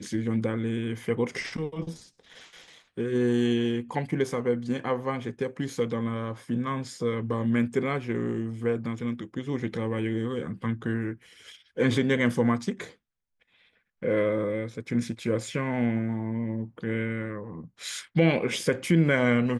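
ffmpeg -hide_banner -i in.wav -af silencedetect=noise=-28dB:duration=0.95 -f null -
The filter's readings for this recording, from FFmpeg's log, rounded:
silence_start: 1.90
silence_end: 2.98 | silence_duration: 1.07
silence_start: 12.82
silence_end: 14.03 | silence_duration: 1.21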